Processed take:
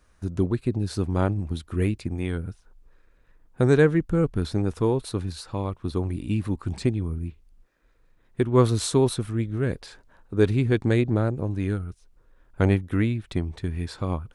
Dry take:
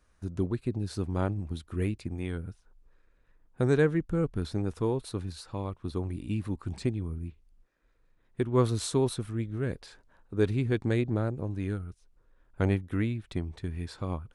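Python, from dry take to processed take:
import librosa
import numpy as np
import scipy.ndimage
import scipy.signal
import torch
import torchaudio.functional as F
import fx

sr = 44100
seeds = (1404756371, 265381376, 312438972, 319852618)

y = F.gain(torch.from_numpy(x), 6.0).numpy()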